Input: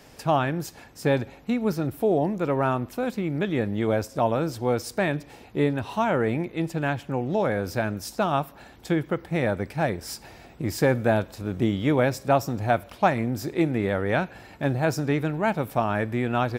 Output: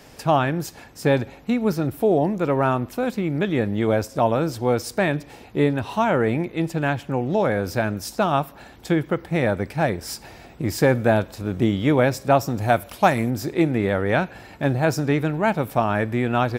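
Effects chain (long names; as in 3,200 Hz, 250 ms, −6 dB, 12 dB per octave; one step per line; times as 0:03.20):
0:12.56–0:13.29: parametric band 12,000 Hz +7 dB → +14.5 dB 1.6 octaves
level +3.5 dB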